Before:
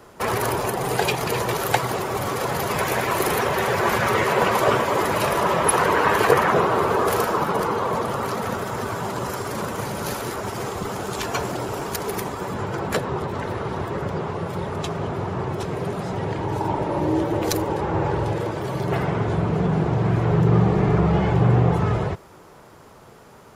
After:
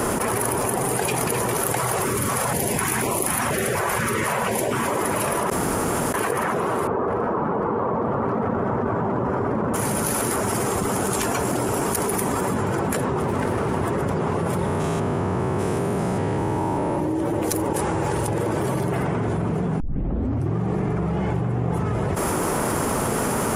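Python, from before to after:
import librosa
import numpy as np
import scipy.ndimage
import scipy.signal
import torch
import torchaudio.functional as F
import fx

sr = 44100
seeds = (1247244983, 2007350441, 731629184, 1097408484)

y = fx.filter_held_notch(x, sr, hz=4.1, low_hz=260.0, high_hz=1600.0, at=(1.8, 4.86))
y = fx.lowpass(y, sr, hz=1200.0, slope=12, at=(6.87, 9.74))
y = fx.running_max(y, sr, window=5, at=(13.21, 13.81))
y = fx.spec_steps(y, sr, hold_ms=200, at=(14.65, 16.94), fade=0.02)
y = fx.pre_emphasis(y, sr, coefficient=0.8, at=(17.73, 18.28))
y = fx.edit(y, sr, fx.room_tone_fill(start_s=5.5, length_s=0.64),
    fx.tape_start(start_s=19.8, length_s=0.77), tone=tone)
y = fx.graphic_eq_15(y, sr, hz=(250, 4000, 10000), db=(6, -6, 12))
y = fx.env_flatten(y, sr, amount_pct=100)
y = F.gain(torch.from_numpy(y), -12.0).numpy()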